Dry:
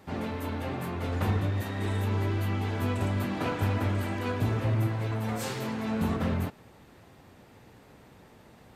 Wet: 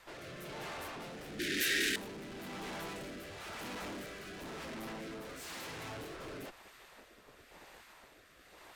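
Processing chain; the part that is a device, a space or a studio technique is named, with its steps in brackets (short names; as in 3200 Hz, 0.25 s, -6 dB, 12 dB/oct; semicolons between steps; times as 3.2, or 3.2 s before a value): spectral gate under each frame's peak -10 dB weak; overdriven rotary cabinet (tube stage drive 49 dB, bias 0.55; rotary speaker horn 1 Hz); 1.39–1.96 EQ curve 180 Hz 0 dB, 360 Hz +11 dB, 960 Hz -26 dB, 1600 Hz +15 dB; gain +8 dB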